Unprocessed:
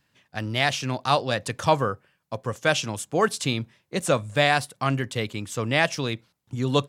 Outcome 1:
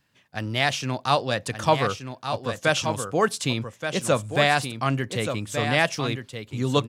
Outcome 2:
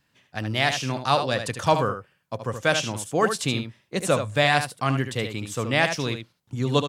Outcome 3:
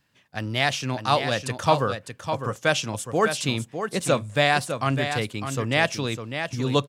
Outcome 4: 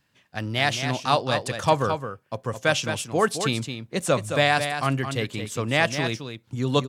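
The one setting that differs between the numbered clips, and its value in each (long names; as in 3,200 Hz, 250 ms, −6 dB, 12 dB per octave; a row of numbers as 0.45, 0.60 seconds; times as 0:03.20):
single-tap delay, delay time: 1,176, 75, 604, 217 milliseconds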